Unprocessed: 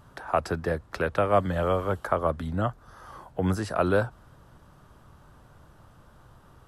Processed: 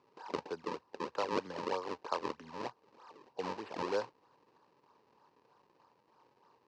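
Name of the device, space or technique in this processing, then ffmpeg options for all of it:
circuit-bent sampling toy: -af "acrusher=samples=35:mix=1:aa=0.000001:lfo=1:lforange=56:lforate=3.2,highpass=410,equalizer=f=440:t=q:w=4:g=4,equalizer=f=650:t=q:w=4:g=-8,equalizer=f=960:t=q:w=4:g=9,equalizer=f=1.4k:t=q:w=4:g=-8,equalizer=f=2.1k:t=q:w=4:g=-6,equalizer=f=3.4k:t=q:w=4:g=-9,lowpass=f=4.9k:w=0.5412,lowpass=f=4.9k:w=1.3066,volume=-8dB"

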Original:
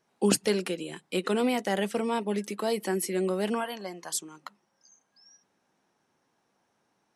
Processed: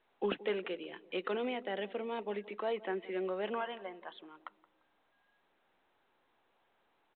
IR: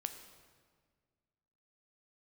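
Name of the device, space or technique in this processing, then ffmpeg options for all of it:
telephone: -filter_complex "[0:a]asettb=1/sr,asplit=3[a][b][c];[a]atrim=end=1.374[d];[b]atrim=start=1.37:end=2.19,asetpts=PTS-STARTPTS,afade=t=in:d=0.004:c=qsin,afade=t=out:st=0.816:d=0.004:c=qsin,equalizer=f=1.1k:t=o:w=1.6:g=-7[e];[c]atrim=start=2.186[f];[d][e]acrossfade=d=0.004:c1=hsin:c2=qsin[g];[g][f]acrossfade=d=0.004:c1=qsin:c2=hsin,highpass=370,lowpass=3.4k,asplit=2[h][i];[i]adelay=173,lowpass=f=820:p=1,volume=-17dB,asplit=2[j][k];[k]adelay=173,lowpass=f=820:p=1,volume=0.49,asplit=2[l][m];[m]adelay=173,lowpass=f=820:p=1,volume=0.49,asplit=2[n][o];[o]adelay=173,lowpass=f=820:p=1,volume=0.49[p];[h][j][l][n][p]amix=inputs=5:normalize=0,asoftclip=type=tanh:threshold=-16dB,volume=-4.5dB" -ar 8000 -c:a pcm_mulaw

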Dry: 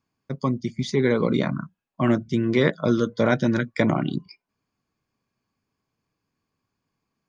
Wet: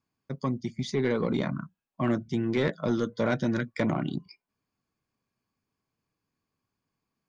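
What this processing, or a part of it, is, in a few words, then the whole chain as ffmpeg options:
saturation between pre-emphasis and de-emphasis: -af "highshelf=f=5.2k:g=8,asoftclip=type=tanh:threshold=-12.5dB,highshelf=f=5.2k:g=-8,volume=-4.5dB"

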